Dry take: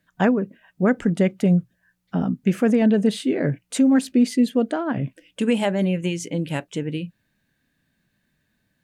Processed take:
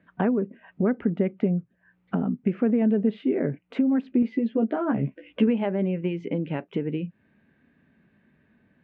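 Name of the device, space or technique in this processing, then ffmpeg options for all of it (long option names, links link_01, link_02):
bass amplifier: -filter_complex "[0:a]acompressor=threshold=-37dB:ratio=3,highpass=70,equalizer=frequency=120:width_type=q:width=4:gain=-5,equalizer=frequency=230:width_type=q:width=4:gain=5,equalizer=frequency=400:width_type=q:width=4:gain=6,equalizer=frequency=1700:width_type=q:width=4:gain=-4,lowpass=frequency=2400:width=0.5412,lowpass=frequency=2400:width=1.3066,asettb=1/sr,asplit=3[link_01][link_02][link_03];[link_01]atrim=end=4.214[link_04];[link_02]atrim=start=4.21:end=5.48,asetpts=PTS-STARTPTS,afade=type=in:duration=0.004:curve=qsin,afade=type=out:start_time=1.266:duration=0.004:curve=qsin,asplit=2[link_05][link_06];[link_06]adelay=14,volume=-3.5dB[link_07];[link_05][link_07]amix=inputs=2:normalize=0,atrim=end_sample=56007[link_08];[link_03]atrim=start=5.476[link_09];[link_04][link_08]acrossfade=duration=0.004:curve1=hsin:curve2=qsin[link_10];[link_10][link_09]acrossfade=duration=0.004:curve1=qsin:curve2=hsin,volume=8dB"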